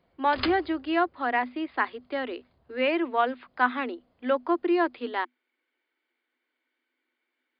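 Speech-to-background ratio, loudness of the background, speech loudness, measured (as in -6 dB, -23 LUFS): 8.0 dB, -35.5 LUFS, -27.5 LUFS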